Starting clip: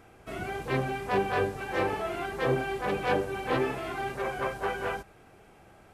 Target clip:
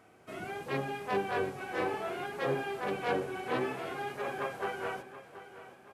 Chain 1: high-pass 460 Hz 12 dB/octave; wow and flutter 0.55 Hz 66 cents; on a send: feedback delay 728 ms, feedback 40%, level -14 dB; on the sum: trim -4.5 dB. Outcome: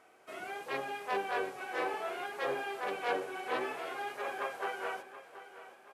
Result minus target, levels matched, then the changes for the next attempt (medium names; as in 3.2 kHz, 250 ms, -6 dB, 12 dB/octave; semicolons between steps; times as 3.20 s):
125 Hz band -15.5 dB
change: high-pass 140 Hz 12 dB/octave